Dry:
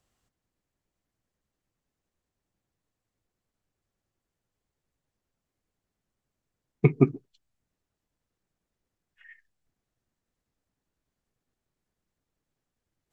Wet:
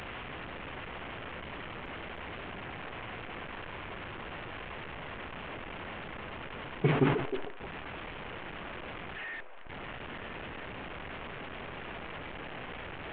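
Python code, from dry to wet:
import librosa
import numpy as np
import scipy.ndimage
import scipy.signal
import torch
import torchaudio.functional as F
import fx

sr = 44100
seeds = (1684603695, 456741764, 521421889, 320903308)

p1 = fx.delta_mod(x, sr, bps=16000, step_db=-30.0)
p2 = fx.low_shelf(p1, sr, hz=300.0, db=-6.0)
p3 = p2 + fx.echo_stepped(p2, sr, ms=310, hz=460.0, octaves=0.7, feedback_pct=70, wet_db=-5.5, dry=0)
p4 = fx.sustainer(p3, sr, db_per_s=62.0)
y = F.gain(torch.from_numpy(p4), -3.5).numpy()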